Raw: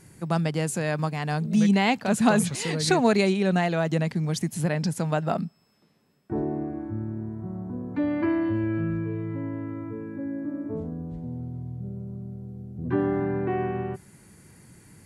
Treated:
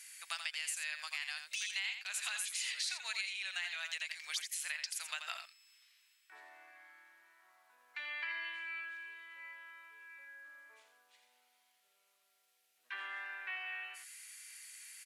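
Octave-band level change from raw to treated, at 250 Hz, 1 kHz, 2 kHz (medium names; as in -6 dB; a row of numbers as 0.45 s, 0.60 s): under -40 dB, -21.5 dB, -6.0 dB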